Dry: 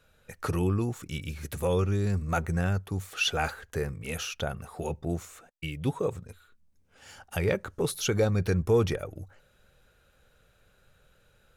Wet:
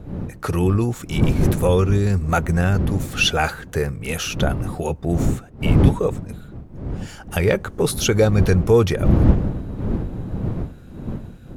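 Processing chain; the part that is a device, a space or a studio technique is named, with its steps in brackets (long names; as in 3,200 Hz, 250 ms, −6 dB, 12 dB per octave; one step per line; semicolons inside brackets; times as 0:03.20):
smartphone video outdoors (wind on the microphone 180 Hz −31 dBFS; automatic gain control gain up to 7 dB; level +2 dB; AAC 96 kbit/s 48,000 Hz)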